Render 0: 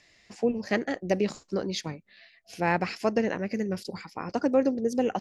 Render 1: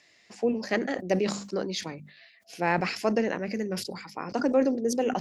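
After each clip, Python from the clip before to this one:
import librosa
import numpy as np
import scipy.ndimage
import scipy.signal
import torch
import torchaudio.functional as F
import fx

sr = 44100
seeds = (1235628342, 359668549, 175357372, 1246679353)

y = scipy.signal.sosfilt(scipy.signal.bessel(2, 170.0, 'highpass', norm='mag', fs=sr, output='sos'), x)
y = fx.hum_notches(y, sr, base_hz=50, count=5)
y = fx.sustainer(y, sr, db_per_s=84.0)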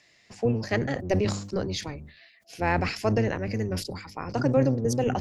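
y = fx.octave_divider(x, sr, octaves=1, level_db=1.0)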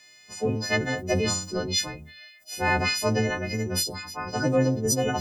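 y = fx.freq_snap(x, sr, grid_st=3)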